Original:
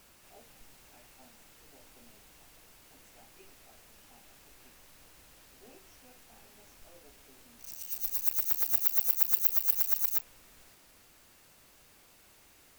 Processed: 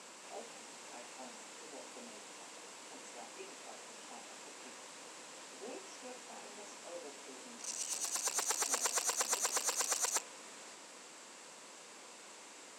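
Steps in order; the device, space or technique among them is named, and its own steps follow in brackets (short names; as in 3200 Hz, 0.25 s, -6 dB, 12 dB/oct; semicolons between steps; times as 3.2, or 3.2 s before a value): television speaker (speaker cabinet 210–8500 Hz, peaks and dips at 500 Hz +5 dB, 990 Hz +6 dB, 7600 Hz +7 dB); gain +7 dB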